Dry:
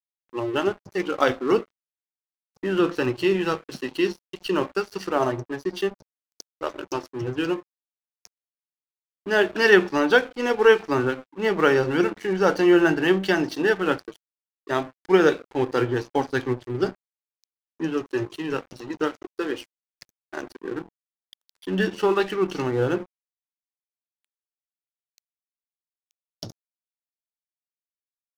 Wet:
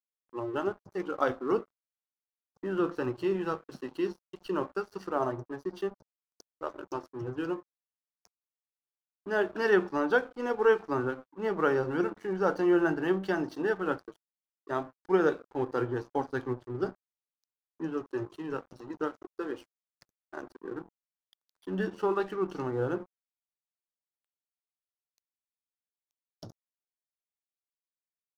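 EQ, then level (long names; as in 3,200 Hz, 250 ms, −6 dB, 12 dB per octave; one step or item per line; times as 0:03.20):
high shelf with overshoot 1,700 Hz −7 dB, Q 1.5
−8.0 dB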